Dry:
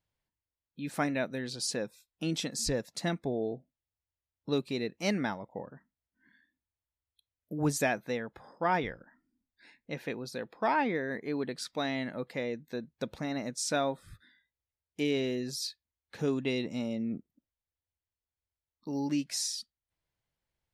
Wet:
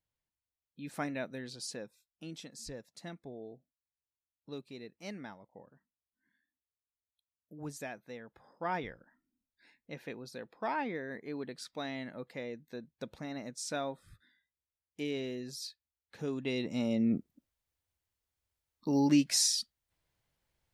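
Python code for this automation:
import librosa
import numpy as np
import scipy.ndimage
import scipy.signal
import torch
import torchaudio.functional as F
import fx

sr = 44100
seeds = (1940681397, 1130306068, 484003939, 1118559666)

y = fx.gain(x, sr, db=fx.line((1.39, -6.0), (2.4, -13.5), (8.02, -13.5), (8.68, -6.5), (16.29, -6.5), (17.07, 5.5)))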